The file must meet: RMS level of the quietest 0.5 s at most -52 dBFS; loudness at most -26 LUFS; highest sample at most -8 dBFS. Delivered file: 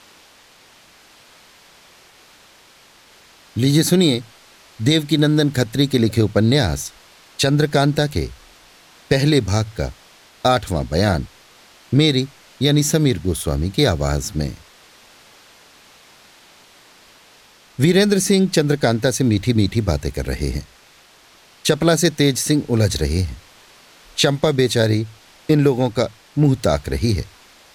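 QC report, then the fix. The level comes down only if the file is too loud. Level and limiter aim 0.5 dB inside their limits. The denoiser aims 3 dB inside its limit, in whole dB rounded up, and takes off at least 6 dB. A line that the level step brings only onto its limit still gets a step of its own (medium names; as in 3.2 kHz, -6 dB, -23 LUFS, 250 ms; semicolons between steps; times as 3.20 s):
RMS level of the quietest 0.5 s -50 dBFS: fail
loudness -18.5 LUFS: fail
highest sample -3.5 dBFS: fail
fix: trim -8 dB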